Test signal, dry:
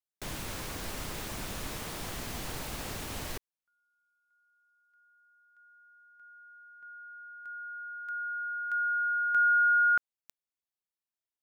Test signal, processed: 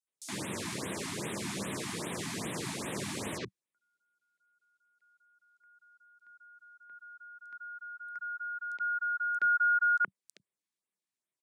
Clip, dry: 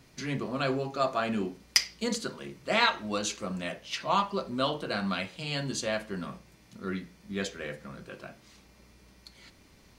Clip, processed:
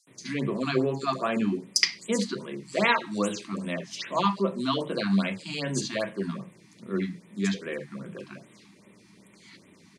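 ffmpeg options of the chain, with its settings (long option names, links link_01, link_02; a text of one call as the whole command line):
ffmpeg -i in.wav -filter_complex "[0:a]highpass=frequency=120:width=0.5412,highpass=frequency=120:width=1.3066,equalizer=frequency=190:width_type=q:width=4:gain=6,equalizer=frequency=370:width_type=q:width=4:gain=3,equalizer=frequency=760:width_type=q:width=4:gain=-7,equalizer=frequency=1400:width_type=q:width=4:gain=-7,equalizer=frequency=2900:width_type=q:width=4:gain=-4,lowpass=frequency=9900:width=0.5412,lowpass=frequency=9900:width=1.3066,acrossover=split=180|5200[link_01][link_02][link_03];[link_02]adelay=70[link_04];[link_01]adelay=100[link_05];[link_05][link_04][link_03]amix=inputs=3:normalize=0,afftfilt=real='re*(1-between(b*sr/1024,450*pow(5800/450,0.5+0.5*sin(2*PI*2.5*pts/sr))/1.41,450*pow(5800/450,0.5+0.5*sin(2*PI*2.5*pts/sr))*1.41))':imag='im*(1-between(b*sr/1024,450*pow(5800/450,0.5+0.5*sin(2*PI*2.5*pts/sr))/1.41,450*pow(5800/450,0.5+0.5*sin(2*PI*2.5*pts/sr))*1.41))':win_size=1024:overlap=0.75,volume=5dB" out.wav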